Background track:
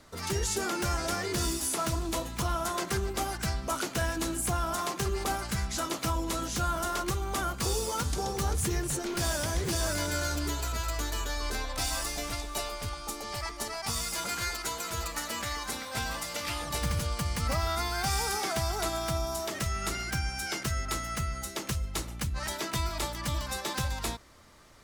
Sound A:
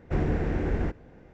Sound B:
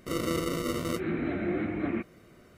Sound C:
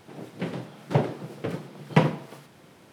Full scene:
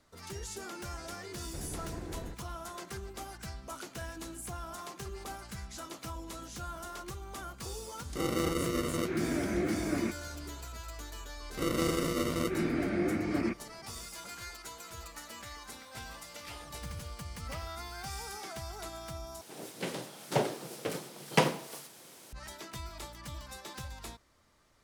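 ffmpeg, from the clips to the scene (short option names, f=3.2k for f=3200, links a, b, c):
-filter_complex "[2:a]asplit=2[a][b];[3:a]asplit=2[c][d];[0:a]volume=-11.5dB[e];[1:a]alimiter=limit=-19.5dB:level=0:latency=1:release=163[f];[c]aderivative[g];[d]bass=f=250:g=-10,treble=f=4k:g=15[h];[e]asplit=2[i][j];[i]atrim=end=19.414[k];[h]atrim=end=2.92,asetpts=PTS-STARTPTS,volume=-2.5dB[l];[j]atrim=start=22.326[m];[f]atrim=end=1.33,asetpts=PTS-STARTPTS,volume=-13dB,afade=t=in:d=0.004:c=hsin,afade=t=out:st=1.326:d=0.004:c=hsin,adelay=1430[n];[a]atrim=end=2.57,asetpts=PTS-STARTPTS,volume=-1.5dB,afade=t=in:d=0.004:c=hsin,afade=t=out:st=2.566:d=0.004:c=hsin,adelay=8090[o];[b]atrim=end=2.57,asetpts=PTS-STARTPTS,volume=-0.5dB,afade=t=in:d=0.004:c=hsin,afade=t=out:st=2.566:d=0.004:c=hsin,adelay=11510[p];[g]atrim=end=2.92,asetpts=PTS-STARTPTS,volume=-9.5dB,afade=t=in:d=0.004:c=hsin,afade=t=out:st=2.916:d=0.004:c=hsin,adelay=686196S[q];[k][l]acrossfade=d=0.004:c1=hsin:c2=hsin[r];[r][m]acrossfade=d=0.004:c1=hsin:c2=hsin[s];[s][n][o][p][q]amix=inputs=5:normalize=0"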